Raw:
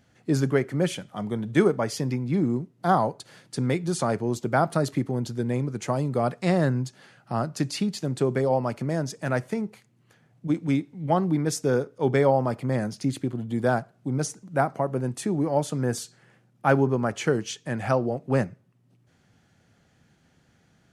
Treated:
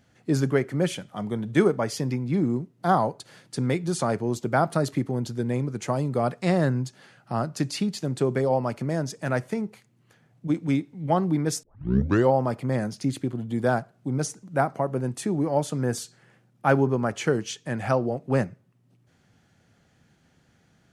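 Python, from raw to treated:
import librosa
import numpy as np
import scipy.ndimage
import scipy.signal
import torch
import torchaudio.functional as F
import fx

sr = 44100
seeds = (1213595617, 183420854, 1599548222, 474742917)

y = fx.edit(x, sr, fx.tape_start(start_s=11.63, length_s=0.68), tone=tone)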